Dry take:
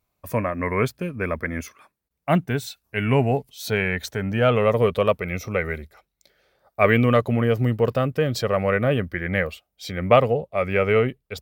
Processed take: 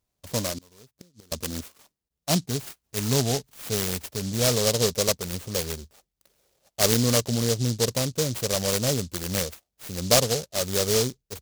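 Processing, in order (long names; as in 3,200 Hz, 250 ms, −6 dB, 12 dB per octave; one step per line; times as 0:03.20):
0:00.58–0:01.32: gate with flip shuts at −24 dBFS, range −27 dB
short delay modulated by noise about 5,200 Hz, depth 0.21 ms
level −4 dB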